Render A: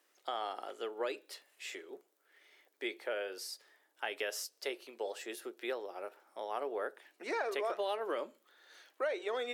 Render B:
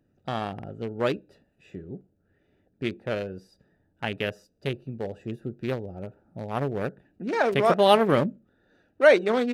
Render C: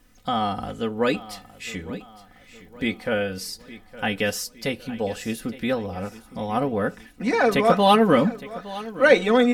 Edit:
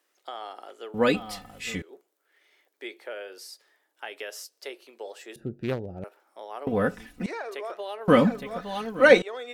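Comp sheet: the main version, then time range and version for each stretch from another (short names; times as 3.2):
A
0.94–1.82 from C
5.36–6.04 from B
6.67–7.26 from C
8.08–9.22 from C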